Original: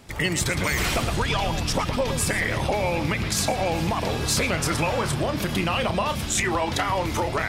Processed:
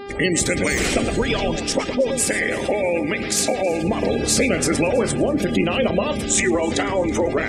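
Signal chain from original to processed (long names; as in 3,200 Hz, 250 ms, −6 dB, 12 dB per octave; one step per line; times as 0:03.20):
octave-band graphic EQ 125/250/500/1,000/2,000/8,000 Hz −5/+10/+8/−7/+4/+7 dB
hum with harmonics 400 Hz, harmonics 25, −34 dBFS −7 dB per octave
0:01.56–0:03.84: low-shelf EQ 230 Hz −9 dB
gate on every frequency bin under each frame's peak −25 dB strong
echo machine with several playback heads 108 ms, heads first and third, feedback 52%, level −23 dB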